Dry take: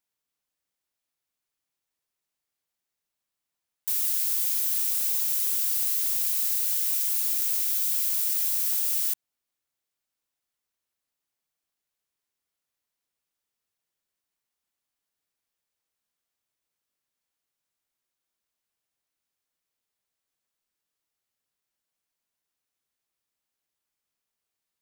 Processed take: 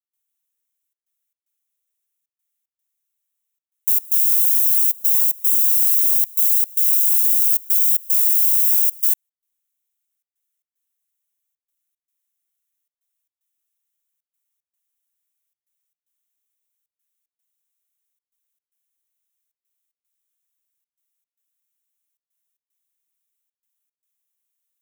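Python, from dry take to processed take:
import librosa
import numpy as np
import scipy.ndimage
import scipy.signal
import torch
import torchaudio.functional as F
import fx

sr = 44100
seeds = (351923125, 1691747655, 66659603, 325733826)

y = fx.tilt_eq(x, sr, slope=4.5)
y = fx.step_gate(y, sr, bpm=113, pattern='.xxxxxx.xx', floor_db=-24.0, edge_ms=4.5)
y = fx.peak_eq(y, sr, hz=4700.0, db=-11.0, octaves=0.32)
y = y * librosa.db_to_amplitude(-8.0)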